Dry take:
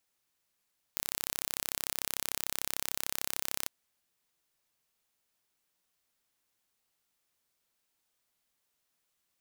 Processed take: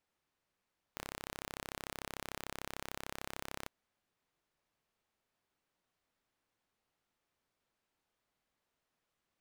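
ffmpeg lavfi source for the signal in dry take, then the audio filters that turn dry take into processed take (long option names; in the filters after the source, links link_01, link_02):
-f lavfi -i "aevalsrc='0.531*eq(mod(n,1320),0)':duration=2.72:sample_rate=44100"
-filter_complex "[0:a]lowpass=frequency=1500:poles=1,asplit=2[link_01][link_02];[link_02]aeval=exprs='0.0299*(abs(mod(val(0)/0.0299+3,4)-2)-1)':channel_layout=same,volume=-8dB[link_03];[link_01][link_03]amix=inputs=2:normalize=0"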